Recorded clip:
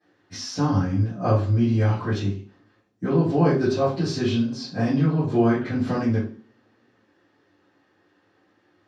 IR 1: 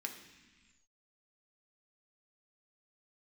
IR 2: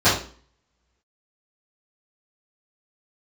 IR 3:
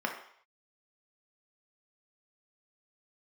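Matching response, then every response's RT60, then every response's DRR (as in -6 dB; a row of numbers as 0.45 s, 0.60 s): 2; 1.3 s, 0.45 s, 0.60 s; 2.5 dB, -16.0 dB, 1.0 dB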